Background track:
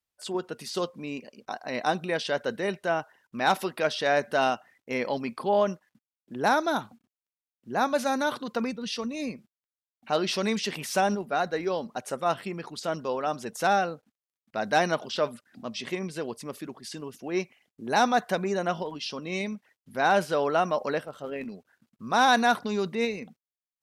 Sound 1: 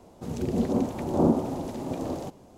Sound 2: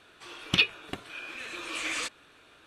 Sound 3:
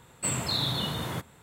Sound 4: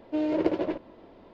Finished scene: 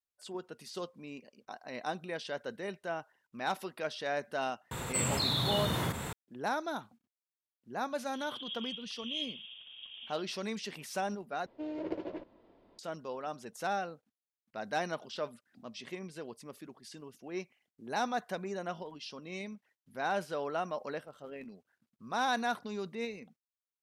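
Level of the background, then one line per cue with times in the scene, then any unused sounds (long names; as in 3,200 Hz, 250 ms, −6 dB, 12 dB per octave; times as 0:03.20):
background track −10.5 dB
0:04.71: mix in 3 −3.5 dB + envelope flattener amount 70%
0:07.92: mix in 1 −17.5 dB + voice inversion scrambler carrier 3,500 Hz
0:11.46: overwrite with 4 −12 dB
not used: 2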